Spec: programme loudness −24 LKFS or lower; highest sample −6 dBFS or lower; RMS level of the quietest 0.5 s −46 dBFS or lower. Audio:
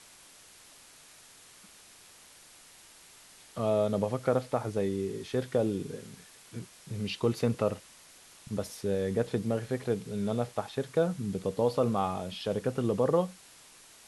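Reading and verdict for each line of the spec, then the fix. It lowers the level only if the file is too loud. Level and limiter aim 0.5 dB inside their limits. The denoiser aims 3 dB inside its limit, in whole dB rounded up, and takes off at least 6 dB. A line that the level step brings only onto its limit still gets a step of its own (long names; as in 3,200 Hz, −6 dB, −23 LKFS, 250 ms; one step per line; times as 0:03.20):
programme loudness −31.0 LKFS: in spec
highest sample −13.0 dBFS: in spec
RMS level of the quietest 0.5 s −55 dBFS: in spec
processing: no processing needed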